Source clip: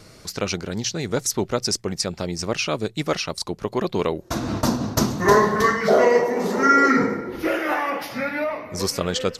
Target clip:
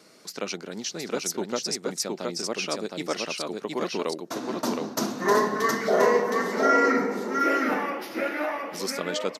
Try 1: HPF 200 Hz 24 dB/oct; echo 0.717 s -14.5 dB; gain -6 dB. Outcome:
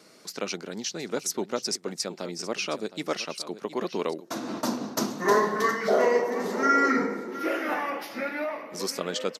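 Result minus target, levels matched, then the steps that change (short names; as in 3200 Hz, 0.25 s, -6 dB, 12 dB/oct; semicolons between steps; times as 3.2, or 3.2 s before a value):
echo-to-direct -11.5 dB
change: echo 0.717 s -3 dB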